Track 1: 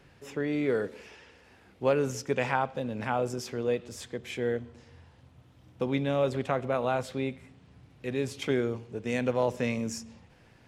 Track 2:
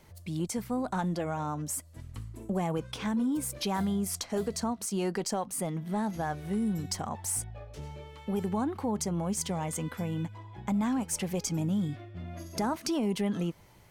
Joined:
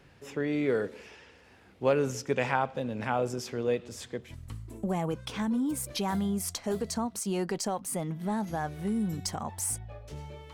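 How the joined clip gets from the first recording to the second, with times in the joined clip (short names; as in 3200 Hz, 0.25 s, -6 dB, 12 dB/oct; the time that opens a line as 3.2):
track 1
4.26 switch to track 2 from 1.92 s, crossfade 0.14 s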